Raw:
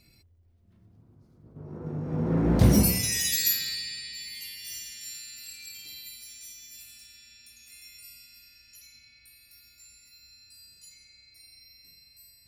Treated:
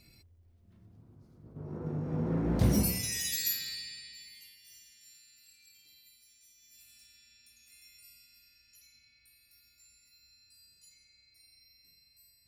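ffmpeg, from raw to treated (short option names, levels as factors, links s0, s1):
-af "volume=2.66,afade=t=out:st=1.74:d=0.69:silence=0.446684,afade=t=out:st=3.8:d=0.8:silence=0.316228,afade=t=in:st=6.53:d=0.48:silence=0.375837"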